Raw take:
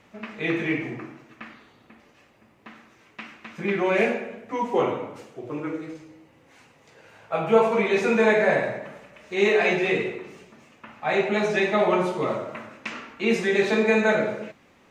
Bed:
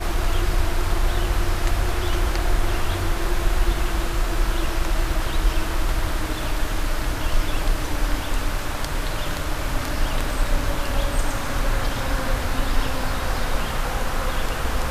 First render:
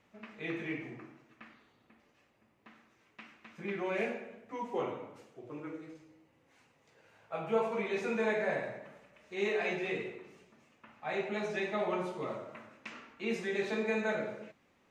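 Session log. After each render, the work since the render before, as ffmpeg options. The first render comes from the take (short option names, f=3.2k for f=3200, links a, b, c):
-af "volume=-12.5dB"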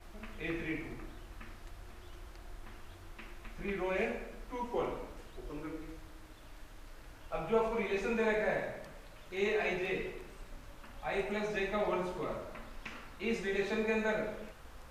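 -filter_complex "[1:a]volume=-28.5dB[a];[0:a][a]amix=inputs=2:normalize=0"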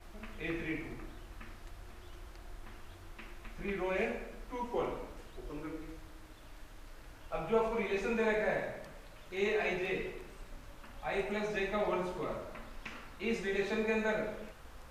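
-af anull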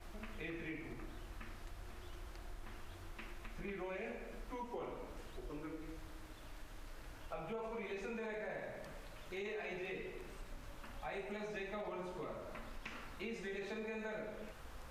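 -af "alimiter=level_in=2dB:limit=-24dB:level=0:latency=1:release=35,volume=-2dB,acompressor=threshold=-44dB:ratio=3"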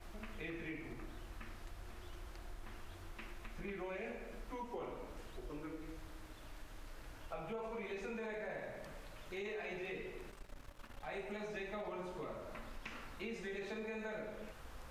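-filter_complex "[0:a]asettb=1/sr,asplit=3[a][b][c];[a]atrim=end=10.304[d];[b]atrim=start=10.3:end=11.08,asetpts=PTS-STARTPTS,afade=t=in:d=0.004:c=qsin,afade=t=out:st=0.776:d=0.004:c=qsin,aeval=exprs='if(lt(val(0),0),0.251*val(0),val(0))':c=same[e];[c]atrim=start=11.076[f];[d][e]acrossfade=d=0.004:c1=hsin:c2=qsin[g];[g][f]acrossfade=d=0.004:c1=qsin:c2=hsin"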